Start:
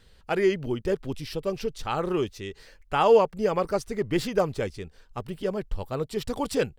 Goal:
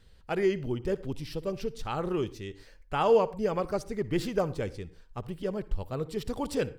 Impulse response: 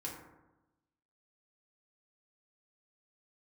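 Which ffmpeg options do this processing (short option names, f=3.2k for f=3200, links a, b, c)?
-filter_complex "[0:a]lowshelf=f=250:g=5.5,asplit=2[a][b];[1:a]atrim=start_sample=2205,atrim=end_sample=3969,adelay=58[c];[b][c]afir=irnorm=-1:irlink=0,volume=-16dB[d];[a][d]amix=inputs=2:normalize=0,volume=-5.5dB"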